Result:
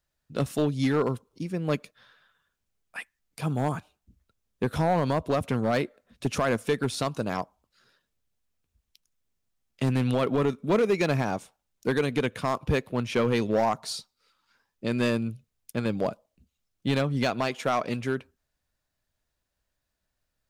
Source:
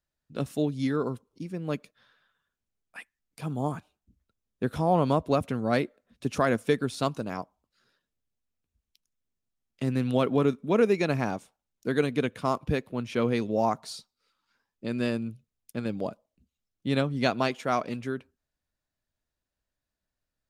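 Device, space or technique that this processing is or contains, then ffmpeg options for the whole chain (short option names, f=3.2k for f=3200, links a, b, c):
limiter into clipper: -af "equalizer=f=260:t=o:w=1.1:g=-3.5,alimiter=limit=-18.5dB:level=0:latency=1:release=179,asoftclip=type=hard:threshold=-23.5dB,volume=6dB"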